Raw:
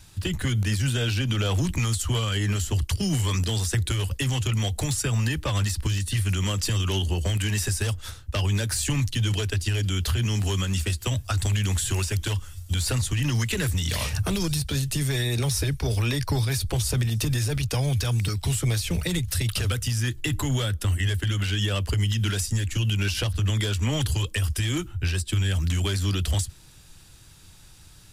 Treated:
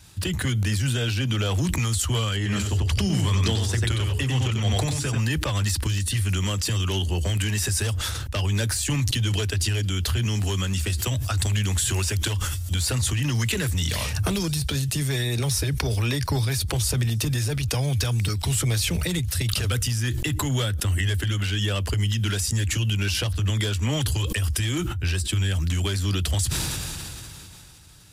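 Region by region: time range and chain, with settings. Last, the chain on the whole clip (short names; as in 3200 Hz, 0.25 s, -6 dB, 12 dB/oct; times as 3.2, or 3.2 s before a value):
2.36–5.18 high shelf 6600 Hz -10 dB + notches 60/120/180/240/300/360/420 Hz + echo 93 ms -4 dB
whole clip: HPF 45 Hz; sustainer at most 20 dB/s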